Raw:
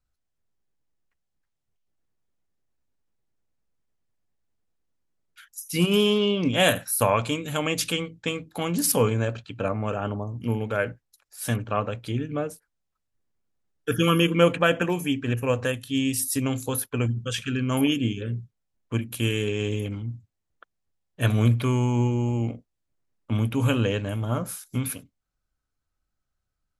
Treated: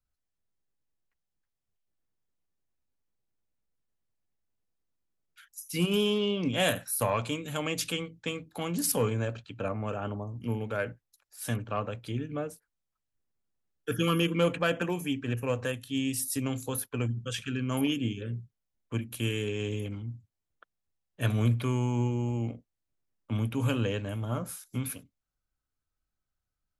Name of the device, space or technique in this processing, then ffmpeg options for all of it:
one-band saturation: -filter_complex "[0:a]acrossover=split=210|3600[link_01][link_02][link_03];[link_02]asoftclip=type=tanh:threshold=-12.5dB[link_04];[link_01][link_04][link_03]amix=inputs=3:normalize=0,volume=-5.5dB"

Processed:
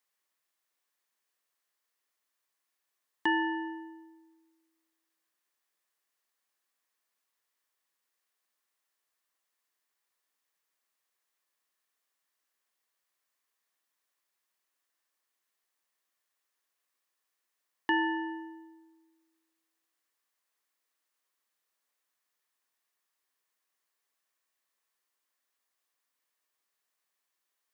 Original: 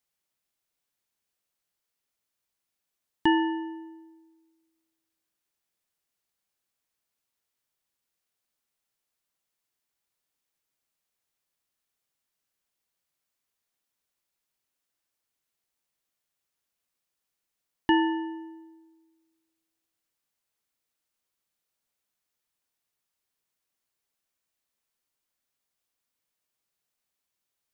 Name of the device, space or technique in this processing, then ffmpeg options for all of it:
laptop speaker: -af "highpass=310,equalizer=frequency=1100:width_type=o:width=0.3:gain=6.5,equalizer=frequency=1800:width_type=o:width=0.33:gain=6.5,alimiter=limit=-17dB:level=0:latency=1:release=408"

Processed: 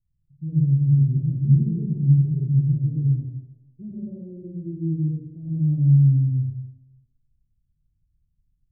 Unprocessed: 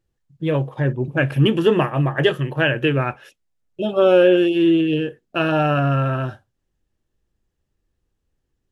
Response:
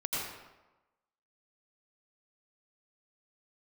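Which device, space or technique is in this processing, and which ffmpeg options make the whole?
club heard from the street: -filter_complex "[0:a]alimiter=limit=-11.5dB:level=0:latency=1:release=69,lowpass=frequency=170:width=0.5412,lowpass=frequency=170:width=1.3066[link_01];[1:a]atrim=start_sample=2205[link_02];[link_01][link_02]afir=irnorm=-1:irlink=0"

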